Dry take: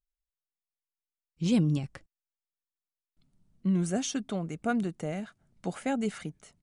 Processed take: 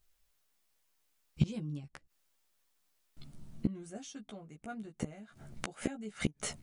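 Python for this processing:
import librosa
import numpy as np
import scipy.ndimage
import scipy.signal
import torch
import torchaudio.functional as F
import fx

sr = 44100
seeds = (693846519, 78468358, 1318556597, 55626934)

y = fx.gate_flip(x, sr, shuts_db=-31.0, range_db=-32)
y = fx.doubler(y, sr, ms=14.0, db=-3)
y = y * 10.0 ** (15.5 / 20.0)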